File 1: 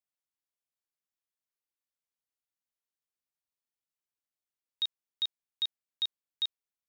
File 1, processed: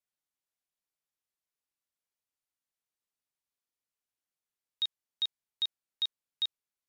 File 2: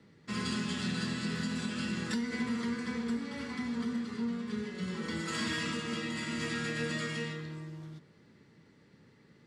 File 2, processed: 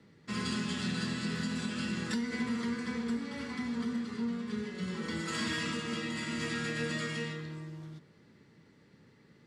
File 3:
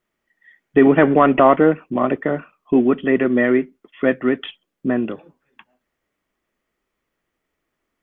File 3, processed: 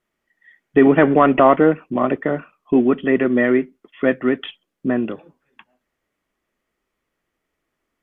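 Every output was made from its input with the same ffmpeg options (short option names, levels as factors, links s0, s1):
-ar 32000 -c:a libmp3lame -b:a 320k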